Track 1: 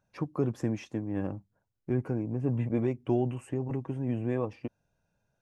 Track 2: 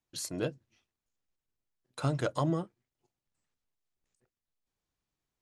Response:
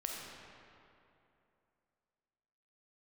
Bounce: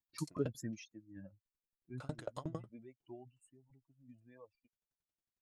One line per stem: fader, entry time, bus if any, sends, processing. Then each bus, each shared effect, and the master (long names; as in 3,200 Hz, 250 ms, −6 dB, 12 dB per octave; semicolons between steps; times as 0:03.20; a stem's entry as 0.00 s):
0:00.64 −3.5 dB → 0:00.95 −12 dB → 0:01.99 −12 dB → 0:02.27 −20 dB, 0.00 s, no send, spectral dynamics exaggerated over time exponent 3; high-shelf EQ 3,500 Hz +11.5 dB
−4.0 dB, 0.00 s, no send, tremolo with a ramp in dB decaying 11 Hz, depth 34 dB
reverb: not used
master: no processing